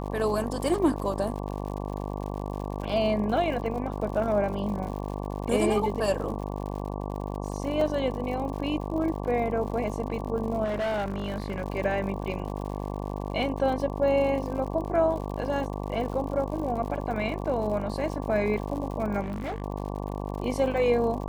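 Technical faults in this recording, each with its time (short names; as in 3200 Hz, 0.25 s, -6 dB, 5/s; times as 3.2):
buzz 50 Hz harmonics 23 -33 dBFS
crackle 99/s -36 dBFS
7.81 gap 3 ms
10.64–11.62 clipped -25.5 dBFS
19.21–19.62 clipped -28.5 dBFS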